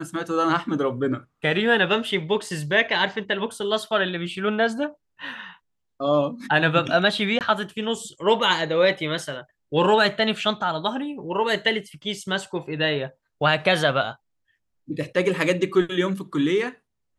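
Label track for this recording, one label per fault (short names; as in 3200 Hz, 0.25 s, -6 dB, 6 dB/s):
7.390000	7.410000	gap 18 ms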